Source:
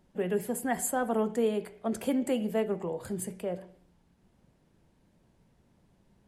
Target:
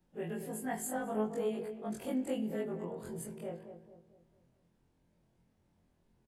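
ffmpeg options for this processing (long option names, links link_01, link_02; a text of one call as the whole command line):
ffmpeg -i in.wav -filter_complex "[0:a]afftfilt=real='re':imag='-im':win_size=2048:overlap=0.75,asplit=2[link_01][link_02];[link_02]adelay=223,lowpass=frequency=1200:poles=1,volume=-8.5dB,asplit=2[link_03][link_04];[link_04]adelay=223,lowpass=frequency=1200:poles=1,volume=0.46,asplit=2[link_05][link_06];[link_06]adelay=223,lowpass=frequency=1200:poles=1,volume=0.46,asplit=2[link_07][link_08];[link_08]adelay=223,lowpass=frequency=1200:poles=1,volume=0.46,asplit=2[link_09][link_10];[link_10]adelay=223,lowpass=frequency=1200:poles=1,volume=0.46[link_11];[link_03][link_05][link_07][link_09][link_11]amix=inputs=5:normalize=0[link_12];[link_01][link_12]amix=inputs=2:normalize=0,volume=-3.5dB" out.wav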